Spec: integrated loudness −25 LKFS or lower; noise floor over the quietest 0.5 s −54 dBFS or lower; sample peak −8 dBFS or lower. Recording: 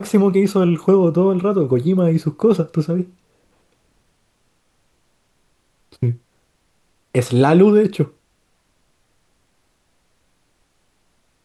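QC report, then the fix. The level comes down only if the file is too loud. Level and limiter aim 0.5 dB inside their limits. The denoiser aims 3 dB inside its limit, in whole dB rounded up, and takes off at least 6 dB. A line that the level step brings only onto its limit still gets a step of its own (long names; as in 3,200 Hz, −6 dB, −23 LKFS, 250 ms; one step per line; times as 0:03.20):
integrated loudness −16.5 LKFS: out of spec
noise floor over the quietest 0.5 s −64 dBFS: in spec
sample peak −2.5 dBFS: out of spec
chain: level −9 dB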